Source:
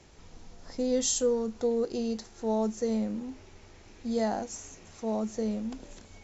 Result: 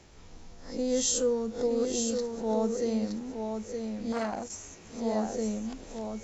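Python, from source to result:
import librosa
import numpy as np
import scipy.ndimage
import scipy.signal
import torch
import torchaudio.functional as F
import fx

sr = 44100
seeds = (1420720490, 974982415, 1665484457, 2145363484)

y = fx.spec_swells(x, sr, rise_s=0.38)
y = y + 10.0 ** (-5.5 / 20.0) * np.pad(y, (int(919 * sr / 1000.0), 0))[:len(y)]
y = fx.transformer_sat(y, sr, knee_hz=1000.0, at=(4.12, 4.6))
y = y * 10.0 ** (-1.0 / 20.0)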